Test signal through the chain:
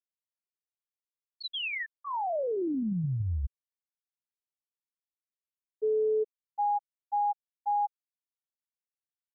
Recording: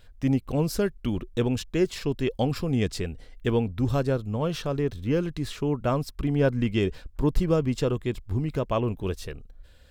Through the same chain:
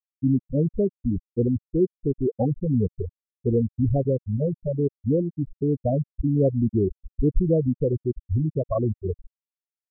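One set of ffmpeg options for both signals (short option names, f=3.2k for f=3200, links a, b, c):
-filter_complex "[0:a]equalizer=f=1.4k:t=o:w=0.55:g=-4.5,afftfilt=real='re*gte(hypot(re,im),0.251)':imag='im*gte(hypot(re,im),0.251)':win_size=1024:overlap=0.75,asplit=2[a][b];[b]alimiter=limit=-23dB:level=0:latency=1:release=13,volume=-1.5dB[c];[a][c]amix=inputs=2:normalize=0"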